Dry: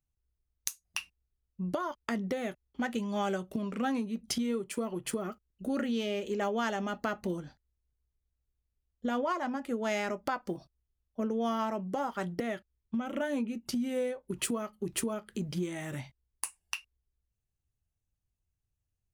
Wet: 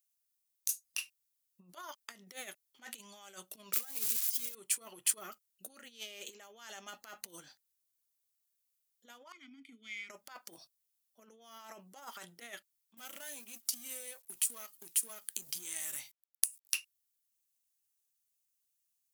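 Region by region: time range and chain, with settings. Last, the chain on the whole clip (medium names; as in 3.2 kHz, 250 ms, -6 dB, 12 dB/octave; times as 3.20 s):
3.73–4.55 s: zero-crossing glitches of -27 dBFS + comb 2.4 ms, depth 39%
9.32–10.10 s: vowel filter i + comb 0.9 ms, depth 75%
12.97–16.74 s: companding laws mixed up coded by A + peaking EQ 16 kHz +11.5 dB 1.6 oct + compression, threshold -39 dBFS
whole clip: compressor with a negative ratio -36 dBFS, ratio -0.5; differentiator; trim +7 dB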